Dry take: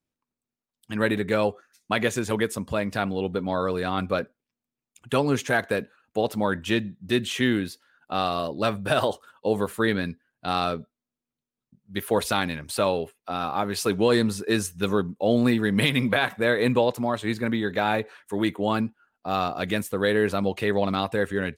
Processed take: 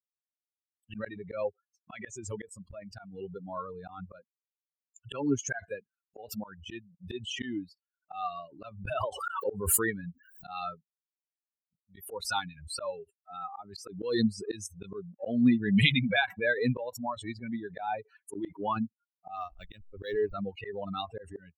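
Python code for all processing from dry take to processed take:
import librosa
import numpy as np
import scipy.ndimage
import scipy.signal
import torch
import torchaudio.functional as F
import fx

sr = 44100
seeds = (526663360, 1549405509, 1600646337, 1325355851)

y = fx.chain(x, sr, fx.dynamic_eq(hz=4800.0, q=0.89, threshold_db=-44.0, ratio=4.0, max_db=-4),
    fx.pre_swell(db_per_s=33.0), at=(8.86, 10.48))
y = fx.chain(y, sr, fx.cheby1_lowpass(hz=4800.0, order=6),
    fx.high_shelf(hz=3000.0, db=8.0),
    fx.backlash(play_db=-23.5), at=(19.36, 20.34))
y = fx.bin_expand(y, sr, power=3.0)
y = fx.auto_swell(y, sr, attack_ms=230.0)
y = fx.pre_swell(y, sr, db_per_s=90.0)
y = y * librosa.db_to_amplitude(3.5)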